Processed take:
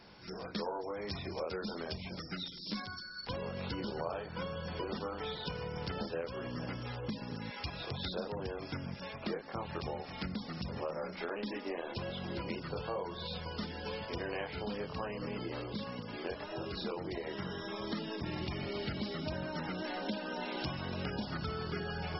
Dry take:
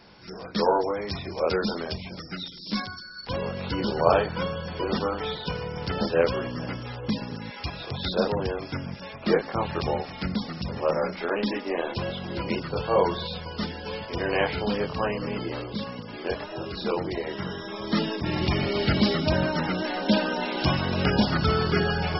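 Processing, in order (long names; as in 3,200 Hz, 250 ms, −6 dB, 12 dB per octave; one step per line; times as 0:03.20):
downward compressor 6 to 1, threshold −31 dBFS, peak gain reduction 16 dB
level −4.5 dB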